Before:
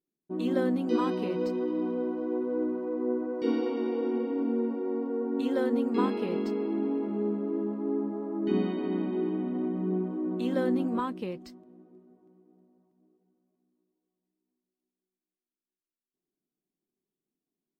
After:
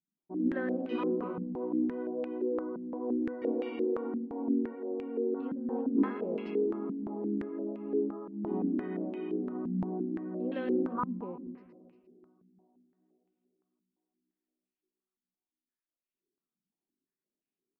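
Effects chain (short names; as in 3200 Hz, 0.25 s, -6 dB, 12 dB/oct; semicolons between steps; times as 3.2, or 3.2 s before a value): split-band echo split 370 Hz, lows 0.19 s, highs 0.117 s, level -10 dB; stepped low-pass 5.8 Hz 200–2600 Hz; gain -8.5 dB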